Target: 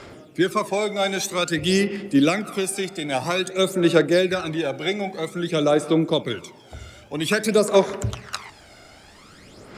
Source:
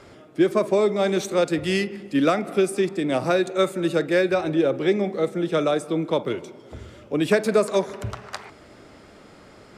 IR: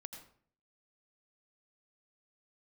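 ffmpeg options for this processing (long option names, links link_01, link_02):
-af "highshelf=frequency=2100:gain=9,aphaser=in_gain=1:out_gain=1:delay=1.4:decay=0.59:speed=0.51:type=sinusoidal,volume=-2.5dB"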